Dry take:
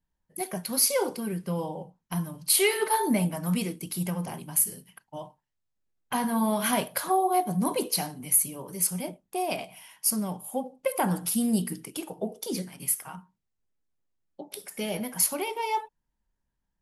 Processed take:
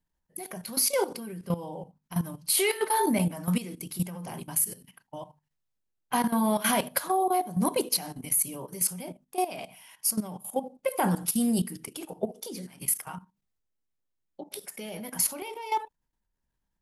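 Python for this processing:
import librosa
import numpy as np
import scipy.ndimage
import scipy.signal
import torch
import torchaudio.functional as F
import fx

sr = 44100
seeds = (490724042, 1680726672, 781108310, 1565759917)

y = fx.hum_notches(x, sr, base_hz=50, count=5)
y = fx.level_steps(y, sr, step_db=14)
y = y * librosa.db_to_amplitude(4.0)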